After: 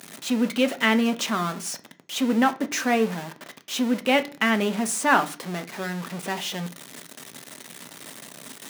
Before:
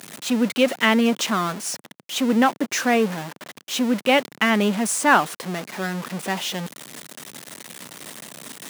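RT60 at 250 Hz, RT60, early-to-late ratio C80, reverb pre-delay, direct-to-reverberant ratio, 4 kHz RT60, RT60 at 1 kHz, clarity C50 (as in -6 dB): 0.50 s, 0.40 s, 23.5 dB, 3 ms, 8.5 dB, 0.45 s, 0.40 s, 18.0 dB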